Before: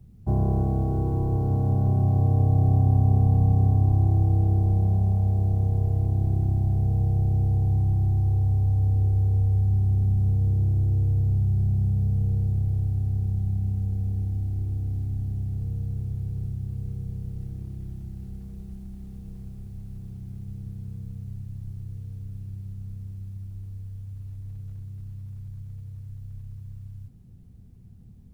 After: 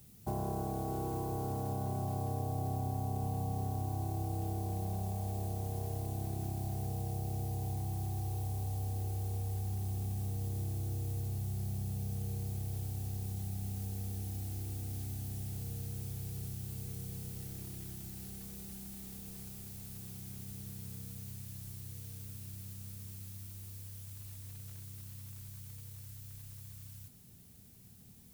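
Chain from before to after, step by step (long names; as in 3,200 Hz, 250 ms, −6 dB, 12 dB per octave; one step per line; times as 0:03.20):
spectral tilt +4.5 dB per octave
downward compressor 2.5 to 1, threshold −39 dBFS, peak gain reduction 7.5 dB
level +3.5 dB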